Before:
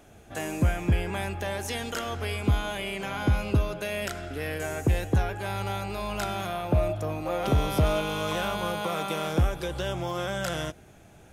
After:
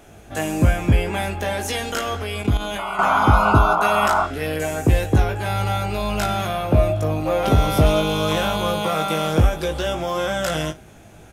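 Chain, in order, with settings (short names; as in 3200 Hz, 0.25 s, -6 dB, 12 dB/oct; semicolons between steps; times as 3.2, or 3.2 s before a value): 2.78–4.25 painted sound noise 610–1500 Hz -26 dBFS; early reflections 19 ms -4.5 dB, 57 ms -17.5 dB; 2.22–2.99 level quantiser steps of 11 dB; gain +6 dB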